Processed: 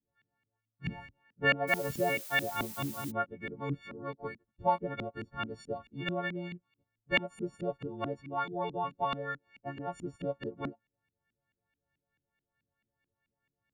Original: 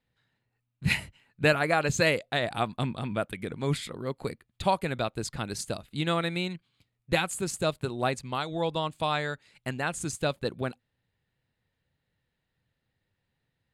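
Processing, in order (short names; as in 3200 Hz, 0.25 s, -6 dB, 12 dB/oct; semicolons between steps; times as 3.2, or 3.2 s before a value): frequency quantiser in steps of 4 st; LFO low-pass saw up 4.6 Hz 230–2600 Hz; 1.67–3.1 added noise blue -37 dBFS; gain -8.5 dB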